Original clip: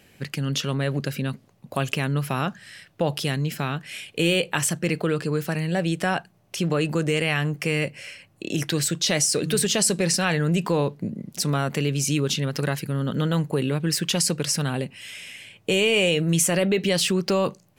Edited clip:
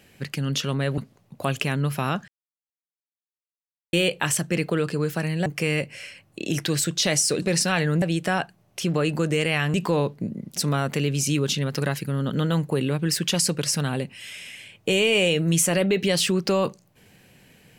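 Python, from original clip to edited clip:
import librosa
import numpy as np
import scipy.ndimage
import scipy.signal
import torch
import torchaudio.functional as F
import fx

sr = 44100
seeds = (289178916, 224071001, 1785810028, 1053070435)

y = fx.edit(x, sr, fx.cut(start_s=0.98, length_s=0.32),
    fx.silence(start_s=2.6, length_s=1.65),
    fx.move(start_s=5.78, length_s=1.72, to_s=10.55),
    fx.cut(start_s=9.46, length_s=0.49), tone=tone)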